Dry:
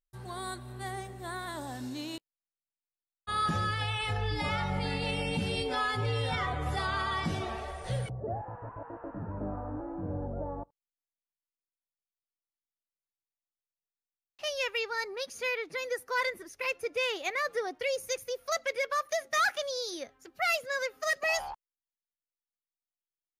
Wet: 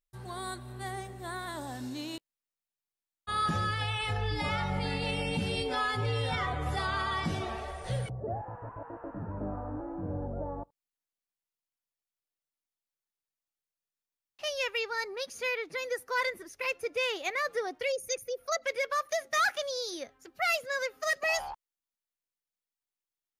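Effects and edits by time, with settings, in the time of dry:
0:17.92–0:18.63: spectral envelope exaggerated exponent 1.5

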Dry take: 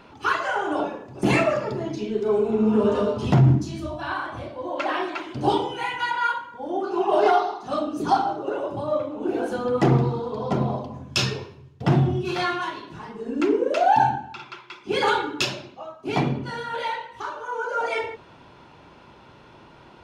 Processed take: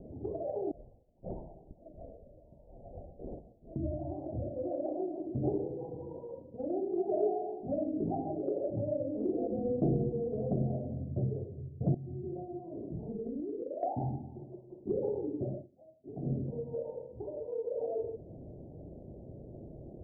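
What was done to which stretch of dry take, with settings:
0:00.71–0:03.76: voice inversion scrambler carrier 3,600 Hz
0:07.03–0:10.28: double-tracking delay 19 ms −5 dB
0:11.94–0:13.83: downward compressor 12 to 1, threshold −33 dBFS
0:15.54–0:16.35: duck −20 dB, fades 0.13 s
whole clip: Butterworth low-pass 680 Hz 72 dB per octave; low-shelf EQ 120 Hz +8.5 dB; downward compressor 2 to 1, threshold −39 dBFS; level +1.5 dB

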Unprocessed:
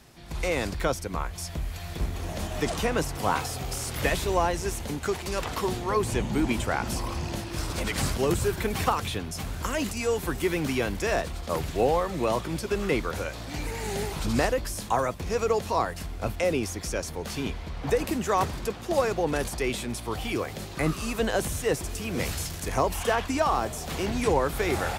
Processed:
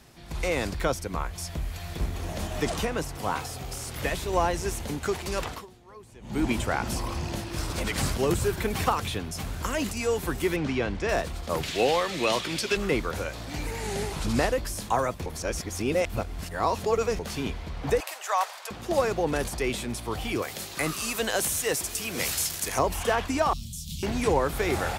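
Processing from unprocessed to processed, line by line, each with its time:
0:02.85–0:04.33: clip gain −3.5 dB
0:05.43–0:06.44: duck −22.5 dB, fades 0.23 s
0:10.56–0:11.09: high-frequency loss of the air 120 metres
0:11.63–0:12.77: meter weighting curve D
0:13.79–0:14.58: variable-slope delta modulation 64 kbit/s
0:15.26–0:17.19: reverse
0:18.00–0:18.71: Butterworth high-pass 610 Hz
0:20.42–0:22.79: spectral tilt +2.5 dB per octave
0:23.53–0:24.03: elliptic band-stop filter 190–3,400 Hz

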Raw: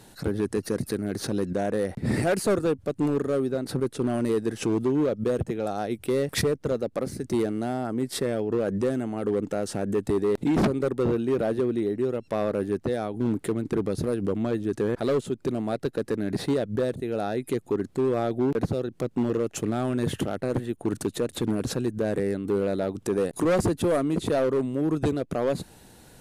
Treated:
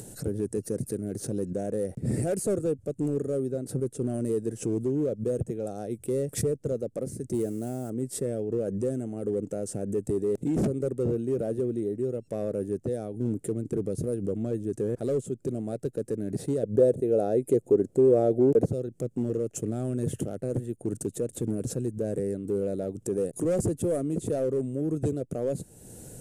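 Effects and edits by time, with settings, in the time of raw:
0:07.34–0:07.90: spike at every zero crossing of −34 dBFS
0:16.63–0:18.69: parametric band 520 Hz +10 dB 1.9 octaves
whole clip: octave-band graphic EQ 125/500/1,000/2,000/4,000/8,000 Hz +6/+6/−12/−6/−11/+10 dB; upward compression, threshold −28 dBFS; level −6 dB

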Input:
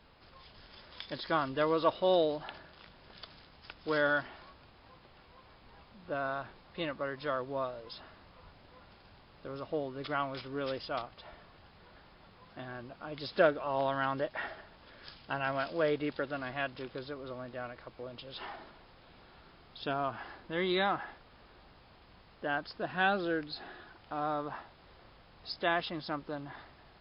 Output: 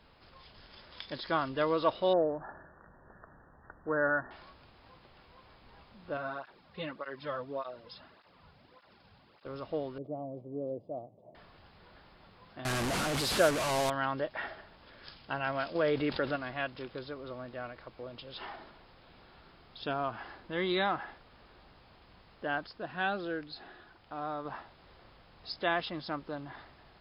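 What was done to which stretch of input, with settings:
0:02.13–0:04.31: linear-phase brick-wall low-pass 1,900 Hz
0:06.17–0:09.46: through-zero flanger with one copy inverted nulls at 1.7 Hz, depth 3.5 ms
0:09.98–0:11.35: elliptic band-pass filter 110–650 Hz
0:12.65–0:13.90: linear delta modulator 64 kbit/s, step −25.5 dBFS
0:15.75–0:16.36: envelope flattener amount 50%
0:22.67–0:24.45: clip gain −3.5 dB

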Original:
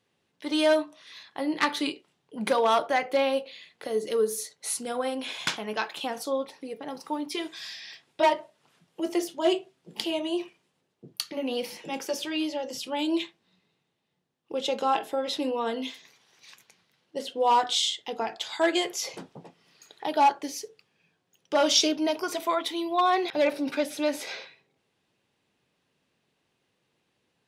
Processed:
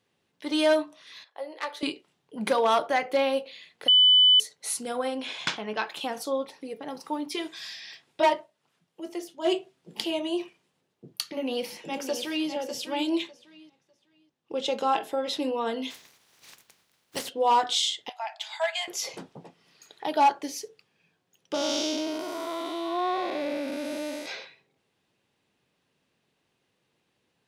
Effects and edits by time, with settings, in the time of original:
0:01.24–0:01.83: four-pole ladder high-pass 460 Hz, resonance 55%
0:03.88–0:04.40: beep over 3,000 Hz −14 dBFS
0:05.07–0:05.86: low-pass filter 9,000 Hz → 4,400 Hz
0:08.34–0:09.52: duck −8 dB, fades 0.13 s
0:11.30–0:12.49: delay throw 600 ms, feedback 20%, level −8.5 dB
0:13.22–0:14.68: low-pass filter 8,900 Hz
0:15.90–0:17.28: compressing power law on the bin magnitudes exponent 0.42
0:18.09–0:18.88: Chebyshev high-pass with heavy ripple 610 Hz, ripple 6 dB
0:21.54–0:24.26: spectrum smeared in time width 354 ms

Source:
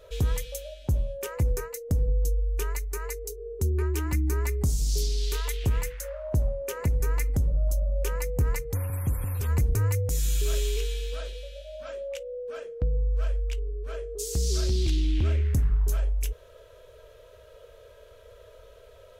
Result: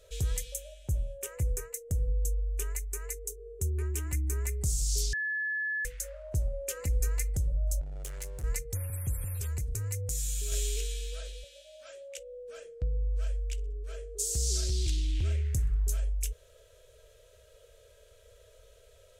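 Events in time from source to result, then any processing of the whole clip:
0:00.54–0:04.57: parametric band 4,500 Hz −9 dB 0.61 octaves
0:05.13–0:05.85: beep over 1,720 Hz −22 dBFS
0:06.53–0:07.08: comb filter 3.8 ms, depth 57%
0:07.81–0:08.44: gain into a clipping stage and back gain 32 dB
0:09.31–0:10.52: downward compressor, threshold −25 dBFS
0:11.44–0:12.18: high-pass filter 520 Hz 6 dB per octave
0:13.42–0:15.88: repeating echo 63 ms, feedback 38%, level −23 dB
whole clip: octave-band graphic EQ 250/1,000/8,000 Hz −10/−10/+10 dB; level −4.5 dB

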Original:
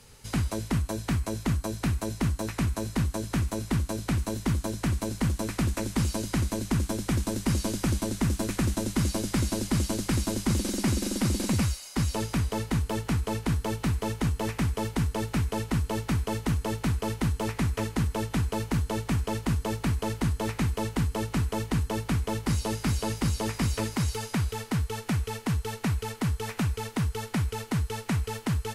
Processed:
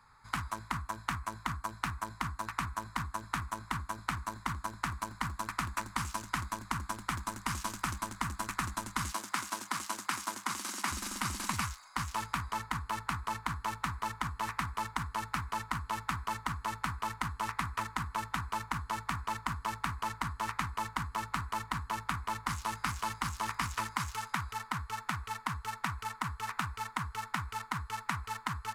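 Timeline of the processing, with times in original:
0:09.13–0:10.92: high-pass filter 260 Hz
whole clip: adaptive Wiener filter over 15 samples; low shelf with overshoot 730 Hz −13.5 dB, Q 3

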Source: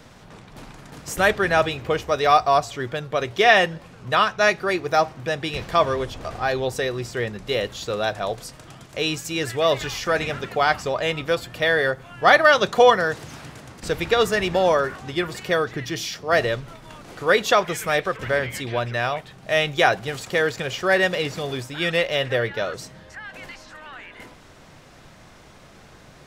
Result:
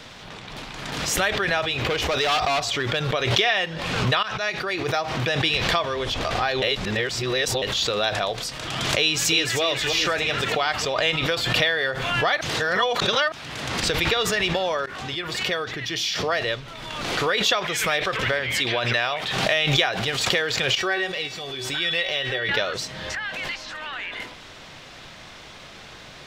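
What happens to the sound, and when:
0:01.79–0:03.07: gain into a clipping stage and back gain 20.5 dB
0:04.23–0:05.35: fade in quadratic, from −16 dB
0:06.62–0:07.62: reverse
0:09.01–0:09.61: delay throw 310 ms, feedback 55%, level −3.5 dB
0:12.41–0:13.32: reverse
0:14.86–0:17.52: fade in, from −20 dB
0:18.59–0:19.52: low-shelf EQ 170 Hz −8 dB
0:20.75–0:22.49: tuned comb filter 380 Hz, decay 0.24 s, mix 80%
whole clip: downward compressor 6 to 1, threshold −26 dBFS; drawn EQ curve 180 Hz 0 dB, 1,500 Hz +6 dB, 3,500 Hz +13 dB, 9,600 Hz +1 dB; background raised ahead of every attack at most 33 dB per second

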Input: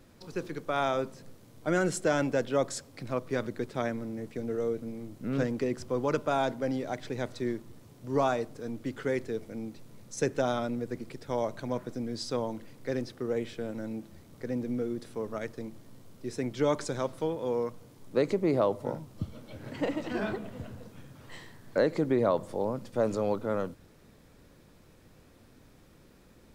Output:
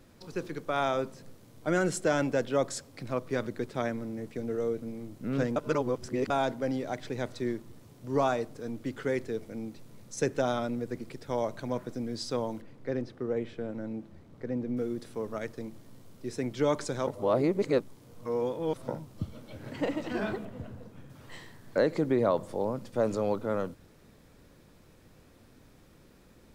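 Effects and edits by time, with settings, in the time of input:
0:05.56–0:06.30: reverse
0:12.61–0:14.77: low-pass filter 1,800 Hz 6 dB per octave
0:17.07–0:18.88: reverse
0:20.45–0:21.10: high-shelf EQ 2,200 Hz −7.5 dB

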